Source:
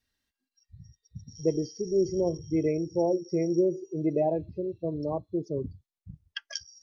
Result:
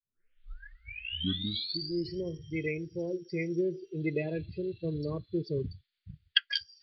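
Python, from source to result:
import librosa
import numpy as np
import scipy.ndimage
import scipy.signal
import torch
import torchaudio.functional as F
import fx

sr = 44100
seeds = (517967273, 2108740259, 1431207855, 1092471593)

y = fx.tape_start_head(x, sr, length_s=2.21)
y = fx.curve_eq(y, sr, hz=(160.0, 280.0, 440.0, 830.0, 1400.0, 2200.0), db=(0, -7, -2, -25, 8, 15))
y = fx.rider(y, sr, range_db=10, speed_s=2.0)
y = scipy.signal.sosfilt(scipy.signal.cheby1(6, 3, 4700.0, 'lowpass', fs=sr, output='sos'), y)
y = y * librosa.db_to_amplitude(-1.0)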